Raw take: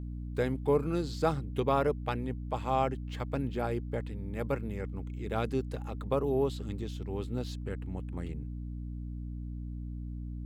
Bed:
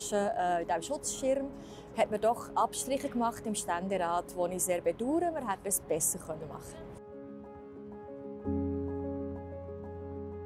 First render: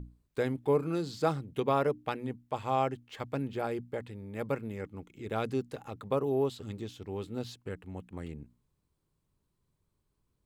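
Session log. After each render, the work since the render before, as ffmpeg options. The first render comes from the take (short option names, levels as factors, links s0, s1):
-af "bandreject=f=60:t=h:w=6,bandreject=f=120:t=h:w=6,bandreject=f=180:t=h:w=6,bandreject=f=240:t=h:w=6,bandreject=f=300:t=h:w=6"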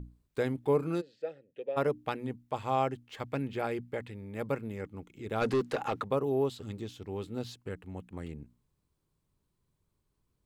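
-filter_complex "[0:a]asplit=3[s0][s1][s2];[s0]afade=t=out:st=1:d=0.02[s3];[s1]asplit=3[s4][s5][s6];[s4]bandpass=f=530:t=q:w=8,volume=1[s7];[s5]bandpass=f=1840:t=q:w=8,volume=0.501[s8];[s6]bandpass=f=2480:t=q:w=8,volume=0.355[s9];[s7][s8][s9]amix=inputs=3:normalize=0,afade=t=in:st=1:d=0.02,afade=t=out:st=1.76:d=0.02[s10];[s2]afade=t=in:st=1.76:d=0.02[s11];[s3][s10][s11]amix=inputs=3:normalize=0,asettb=1/sr,asplit=3[s12][s13][s14];[s12]atrim=end=3.264[s15];[s13]atrim=start=3.26:end=4.34,asetpts=PTS-STARTPTS,afade=t=in:d=0.004:c=qsin,afade=t=out:st=1.076:d=0.004:c=qsin,equalizer=f=2200:w=1.5:g=5[s16];[s14]atrim=start=4.336[s17];[s15][s16]acrossfade=d=0.004:c1=hsin:c2=qsin[s18];[s18][s17]acrossfade=d=0.004:c1=qsin:c2=hsin,asplit=3[s19][s20][s21];[s19]afade=t=out:st=5.4:d=0.02[s22];[s20]asplit=2[s23][s24];[s24]highpass=f=720:p=1,volume=15.8,asoftclip=type=tanh:threshold=0.112[s25];[s23][s25]amix=inputs=2:normalize=0,lowpass=f=2300:p=1,volume=0.501,afade=t=in:st=5.4:d=0.02,afade=t=out:st=6.03:d=0.02[s26];[s21]afade=t=in:st=6.03:d=0.02[s27];[s22][s26][s27]amix=inputs=3:normalize=0"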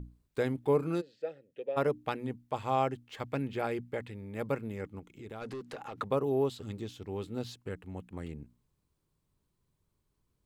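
-filter_complex "[0:a]asettb=1/sr,asplit=3[s0][s1][s2];[s0]atrim=end=4.994[s3];[s1]atrim=start=4.99:end=5.98,asetpts=PTS-STARTPTS,afade=t=in:d=0.004:c=qsin,afade=t=out:st=0.986:d=0.004:c=qsin,acompressor=threshold=0.00631:ratio=2.5:attack=3.2:release=140:knee=1:detection=peak[s4];[s2]atrim=start=5.976[s5];[s3][s4]acrossfade=d=0.004:c1=hsin:c2=qsin[s6];[s6][s5]acrossfade=d=0.004:c1=qsin:c2=hsin"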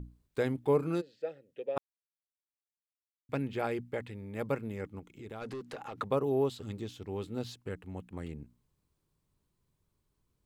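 -filter_complex "[0:a]asplit=3[s0][s1][s2];[s0]atrim=end=1.78,asetpts=PTS-STARTPTS,afade=t=out:st=1.776:d=0.004:c=hsin[s3];[s1]atrim=start=1.78:end=3.29,asetpts=PTS-STARTPTS,volume=0[s4];[s2]atrim=start=3.29,asetpts=PTS-STARTPTS,afade=t=in:d=0.004:c=hsin[s5];[s3][s4][s5]concat=n=3:v=0:a=1"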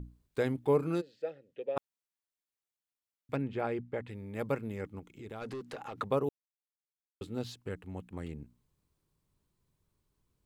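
-filter_complex "[0:a]asettb=1/sr,asplit=3[s0][s1][s2];[s0]atrim=end=1.304[s3];[s1]atrim=start=1.3:end=1.77,asetpts=PTS-STARTPTS,afade=t=in:d=0.004:c=qsin,afade=t=out:st=0.466:d=0.004:c=qsin,lowpass=5500[s4];[s2]atrim=start=1.766[s5];[s3][s4]acrossfade=d=0.004:c1=hsin:c2=qsin[s6];[s6][s5]acrossfade=d=0.004:c1=qsin:c2=hsin,asplit=3[s7][s8][s9];[s7]afade=t=out:st=3.35:d=0.02[s10];[s8]lowpass=f=2000:p=1,afade=t=in:st=3.35:d=0.02,afade=t=out:st=4.07:d=0.02[s11];[s9]afade=t=in:st=4.07:d=0.02[s12];[s10][s11][s12]amix=inputs=3:normalize=0,asplit=3[s13][s14][s15];[s13]atrim=end=6.29,asetpts=PTS-STARTPTS,afade=t=out:st=6.286:d=0.004:c=hsin[s16];[s14]atrim=start=6.29:end=7.21,asetpts=PTS-STARTPTS,volume=0[s17];[s15]atrim=start=7.21,asetpts=PTS-STARTPTS,afade=t=in:d=0.004:c=hsin[s18];[s16][s17][s18]concat=n=3:v=0:a=1"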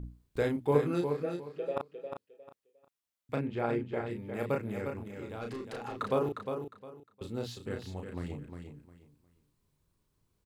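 -filter_complex "[0:a]asplit=2[s0][s1];[s1]adelay=34,volume=0.631[s2];[s0][s2]amix=inputs=2:normalize=0,asplit=2[s3][s4];[s4]aecho=0:1:356|712|1068:0.447|0.107|0.0257[s5];[s3][s5]amix=inputs=2:normalize=0"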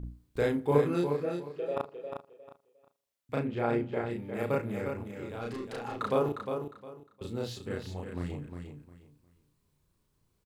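-filter_complex "[0:a]asplit=2[s0][s1];[s1]adelay=34,volume=0.447[s2];[s0][s2]amix=inputs=2:normalize=0,asplit=2[s3][s4];[s4]adelay=80,lowpass=f=2000:p=1,volume=0.0841,asplit=2[s5][s6];[s6]adelay=80,lowpass=f=2000:p=1,volume=0.52,asplit=2[s7][s8];[s8]adelay=80,lowpass=f=2000:p=1,volume=0.52,asplit=2[s9][s10];[s10]adelay=80,lowpass=f=2000:p=1,volume=0.52[s11];[s3][s5][s7][s9][s11]amix=inputs=5:normalize=0"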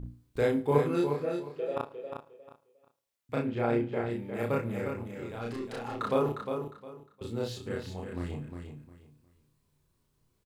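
-filter_complex "[0:a]asplit=2[s0][s1];[s1]adelay=26,volume=0.398[s2];[s0][s2]amix=inputs=2:normalize=0,aecho=1:1:108:0.0708"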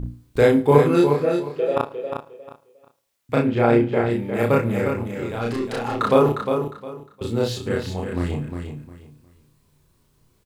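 -af "volume=3.76,alimiter=limit=0.891:level=0:latency=1"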